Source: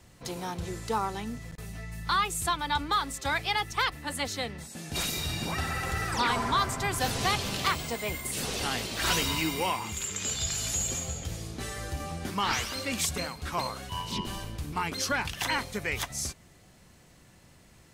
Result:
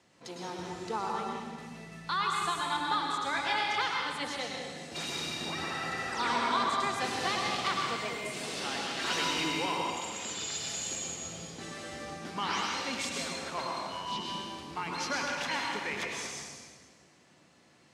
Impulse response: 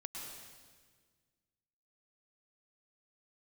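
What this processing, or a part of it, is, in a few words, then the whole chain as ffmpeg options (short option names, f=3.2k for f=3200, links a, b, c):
supermarket ceiling speaker: -filter_complex "[0:a]asettb=1/sr,asplit=3[a][b][c];[a]atrim=end=3.304[d];[b]atrim=start=3.3:end=3.79,asetpts=PTS-STARTPTS,afade=t=in:d=0.004:c=qsin,afade=t=out:st=0.486:d=0.004:c=qsin,asplit=2[e][f];[f]adelay=28,volume=-4dB[g];[e][g]amix=inputs=2:normalize=0,atrim=end_sample=21609[h];[c]atrim=start=3.786[i];[d][h]acrossfade=d=0.004:c1=hsin:c2=qsin[j];[j][i]acrossfade=d=0.004:c1=qsin:c2=hsin,highpass=220,lowpass=6.3k[k];[1:a]atrim=start_sample=2205[l];[k][l]afir=irnorm=-1:irlink=0"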